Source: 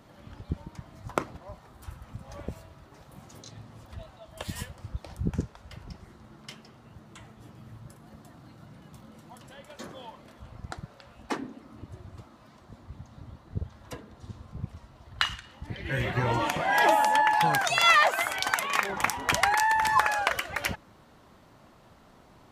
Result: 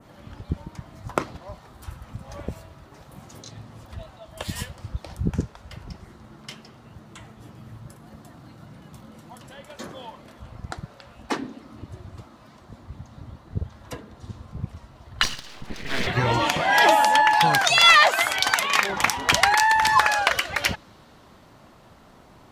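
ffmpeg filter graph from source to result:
ffmpeg -i in.wav -filter_complex "[0:a]asettb=1/sr,asplit=3[link_01][link_02][link_03];[link_01]atrim=end=15.234[link_04];[link_02]atrim=start=15.23:end=16.07,asetpts=PTS-STARTPTS,afade=type=in:duration=0.004:curve=qsin,afade=type=out:start_time=0.836:duration=0.004:curve=qsin,acompressor=mode=upward:threshold=-38dB:ratio=2.5:attack=3.2:release=140:knee=2.83:detection=peak,aeval=exprs='abs(val(0))':channel_layout=same[link_05];[link_03]atrim=start=16.066[link_06];[link_04][link_05]acrossfade=duration=0.004:curve1=hsin:curve2=qsin[link_07];[link_07][link_06]acrossfade=duration=0.004:curve1=qsin:curve2=hsin,adynamicequalizer=threshold=0.00562:dfrequency=4200:dqfactor=0.93:tfrequency=4200:tqfactor=0.93:attack=5:release=100:ratio=0.375:range=3.5:mode=boostabove:tftype=bell,acontrast=41,volume=-1dB" out.wav

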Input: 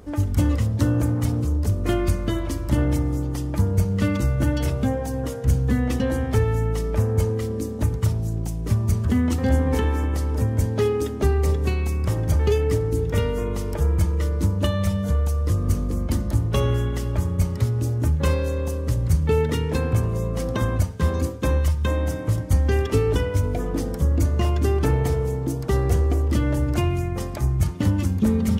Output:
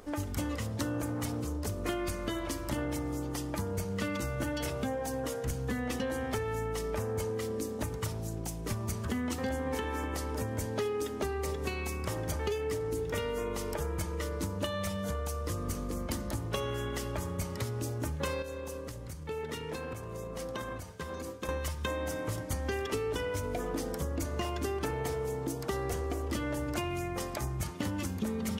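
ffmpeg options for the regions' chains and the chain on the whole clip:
ffmpeg -i in.wav -filter_complex "[0:a]asettb=1/sr,asplit=3[link_01][link_02][link_03];[link_01]atrim=end=18.424[link_04];[link_02]atrim=start=18.42:end=21.49,asetpts=PTS-STARTPTS,afade=type=in:duration=0.004:curve=qsin,afade=type=out:start_time=3.066:duration=0.004:curve=qsin,flanger=delay=1.9:depth=4.2:regen=-78:speed=1.2:shape=sinusoidal,acompressor=threshold=-27dB:ratio=6:attack=3.2:release=140:knee=1:detection=peak[link_05];[link_03]atrim=start=21.486[link_06];[link_04][link_05]acrossfade=duration=0.004:curve1=hsin:curve2=qsin[link_07];[link_07][link_06]acrossfade=duration=0.004:curve1=qsin:curve2=hsin,equalizer=frequency=75:width=0.31:gain=-14,acompressor=threshold=-30dB:ratio=6" out.wav

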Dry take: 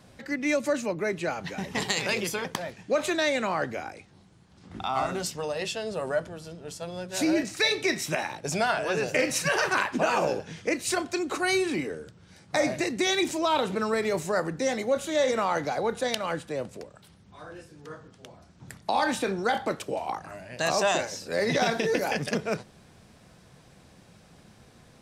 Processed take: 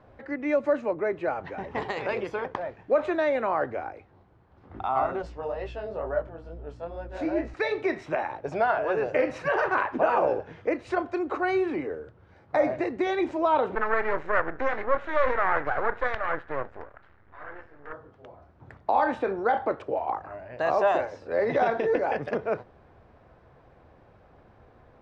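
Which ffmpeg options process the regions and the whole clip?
ffmpeg -i in.wav -filter_complex "[0:a]asettb=1/sr,asplit=3[link_01][link_02][link_03];[link_01]atrim=end=5.224[link_04];[link_02]atrim=start=5.22:end=7.54,asetpts=PTS-STARTPTS,afade=type=in:duration=0.004:curve=qsin,afade=type=out:start_time=2.316:duration=0.004:curve=qsin,aeval=exprs='val(0)+0.00891*(sin(2*PI*60*n/s)+sin(2*PI*2*60*n/s)/2+sin(2*PI*3*60*n/s)/3+sin(2*PI*4*60*n/s)/4+sin(2*PI*5*60*n/s)/5)':channel_layout=same,flanger=delay=17.5:depth=6.8:speed=2.2[link_05];[link_03]atrim=start=7.536[link_06];[link_04][link_05]acrossfade=duration=0.004:curve1=hsin:curve2=qsin[link_07];[link_07][link_06]acrossfade=duration=0.004:curve1=qsin:curve2=hsin,asettb=1/sr,asplit=3[link_08][link_09][link_10];[link_08]atrim=end=13.754[link_11];[link_09]atrim=start=13.75:end=17.93,asetpts=PTS-STARTPTS,afade=type=in:duration=0.004:curve=qsin,afade=type=out:start_time=4.176:duration=0.004:curve=qsin,lowpass=6400,aeval=exprs='max(val(0),0)':channel_layout=same,equalizer=frequency=1700:width_type=o:width=1.2:gain=13[link_12];[link_10]atrim=start=17.926[link_13];[link_11][link_12]acrossfade=duration=0.004:curve1=hsin:curve2=qsin[link_14];[link_14][link_13]acrossfade=duration=0.004:curve1=qsin:curve2=hsin,lowpass=1200,equalizer=frequency=180:width_type=o:width=1.1:gain=-14,volume=4.5dB" out.wav

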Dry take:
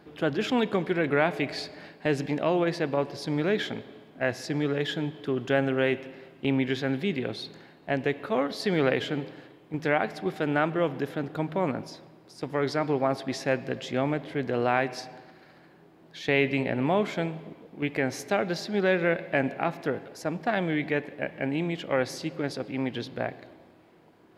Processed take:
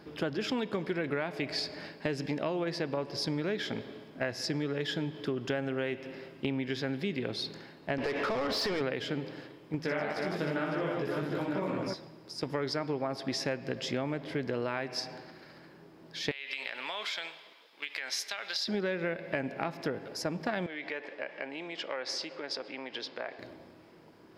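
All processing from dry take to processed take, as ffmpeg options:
ffmpeg -i in.wav -filter_complex "[0:a]asettb=1/sr,asplit=3[link_01][link_02][link_03];[link_01]atrim=end=7.984[link_04];[link_02]atrim=start=7.98:end=8.81,asetpts=PTS-STARTPTS,afade=type=in:duration=0.004:curve=qsin,afade=type=out:start_time=0.826:duration=0.004:curve=qsin,acompressor=threshold=-30dB:ratio=6:attack=3.2:release=140:knee=1:detection=peak,asplit=2[link_05][link_06];[link_06]highpass=frequency=720:poles=1,volume=27dB,asoftclip=type=tanh:threshold=-18dB[link_07];[link_05][link_07]amix=inputs=2:normalize=0,lowpass=frequency=2000:poles=1,volume=-6dB[link_08];[link_03]atrim=start=8.806[link_09];[link_04][link_08]acrossfade=duration=0.004:curve1=hsin:curve2=qsin[link_10];[link_10][link_09]acrossfade=duration=0.004:curve1=qsin:curve2=hsin,asettb=1/sr,asplit=3[link_11][link_12][link_13];[link_11]atrim=end=9.824[link_14];[link_12]atrim=start=9.82:end=11.94,asetpts=PTS-STARTPTS,afade=type=in:duration=0.004:curve=qsin,afade=type=out:start_time=2.116:duration=0.004:curve=qsin,flanger=delay=16.5:depth=4.1:speed=2.5,aecho=1:1:60|156|309.6|555.4|948.6:0.794|0.631|0.501|0.398|0.316,atrim=end_sample=93492[link_15];[link_13]atrim=start=11.936[link_16];[link_14][link_15]acrossfade=duration=0.004:curve1=hsin:curve2=qsin[link_17];[link_17][link_16]acrossfade=duration=0.004:curve1=qsin:curve2=hsin,asettb=1/sr,asplit=3[link_18][link_19][link_20];[link_18]atrim=end=16.314[link_21];[link_19]atrim=start=16.31:end=18.68,asetpts=PTS-STARTPTS,afade=type=in:duration=0.004:curve=qsin,afade=type=out:start_time=2.366:duration=0.004:curve=qsin,highpass=1300,equalizer=frequency=3600:width=2.1:gain=8.5,acompressor=threshold=-32dB:ratio=12:attack=3.2:release=140:knee=1:detection=peak[link_22];[link_20]atrim=start=18.676[link_23];[link_21][link_22]acrossfade=duration=0.004:curve1=hsin:curve2=qsin[link_24];[link_24][link_23]acrossfade=duration=0.004:curve1=qsin:curve2=hsin,asettb=1/sr,asplit=3[link_25][link_26][link_27];[link_25]atrim=end=20.664[link_28];[link_26]atrim=start=20.66:end=23.39,asetpts=PTS-STARTPTS,afade=type=in:duration=0.004:curve=qsin,afade=type=out:start_time=2.726:duration=0.004:curve=qsin,acompressor=threshold=-31dB:ratio=4:attack=3.2:release=140:knee=1:detection=peak,highpass=520,lowpass=5800[link_29];[link_27]atrim=start=23.386[link_30];[link_28][link_29]acrossfade=duration=0.004:curve1=hsin:curve2=qsin[link_31];[link_31][link_30]acrossfade=duration=0.004:curve1=qsin:curve2=hsin,equalizer=frequency=5100:width=5:gain=9.5,bandreject=frequency=740:width=12,acompressor=threshold=-31dB:ratio=6,volume=1.5dB" out.wav

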